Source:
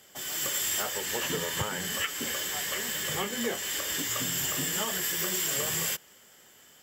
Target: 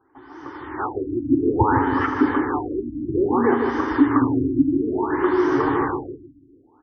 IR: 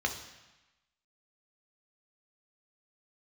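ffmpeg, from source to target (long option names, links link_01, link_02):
-filter_complex "[0:a]firequalizer=gain_entry='entry(120,0);entry(180,-24);entry(280,13);entry(590,-17);entry(870,7);entry(2700,-27)':delay=0.05:min_phase=1,dynaudnorm=framelen=240:gausssize=7:maxgain=16dB,asplit=2[link_01][link_02];[link_02]adelay=155,lowpass=frequency=2000:poles=1,volume=-5dB,asplit=2[link_03][link_04];[link_04]adelay=155,lowpass=frequency=2000:poles=1,volume=0.42,asplit=2[link_05][link_06];[link_06]adelay=155,lowpass=frequency=2000:poles=1,volume=0.42,asplit=2[link_07][link_08];[link_08]adelay=155,lowpass=frequency=2000:poles=1,volume=0.42,asplit=2[link_09][link_10];[link_10]adelay=155,lowpass=frequency=2000:poles=1,volume=0.42[link_11];[link_01][link_03][link_05][link_07][link_09][link_11]amix=inputs=6:normalize=0,asplit=2[link_12][link_13];[1:a]atrim=start_sample=2205,adelay=78[link_14];[link_13][link_14]afir=irnorm=-1:irlink=0,volume=-19dB[link_15];[link_12][link_15]amix=inputs=2:normalize=0,afftfilt=real='re*lt(b*sr/1024,330*pow(6500/330,0.5+0.5*sin(2*PI*0.59*pts/sr)))':imag='im*lt(b*sr/1024,330*pow(6500/330,0.5+0.5*sin(2*PI*0.59*pts/sr)))':win_size=1024:overlap=0.75"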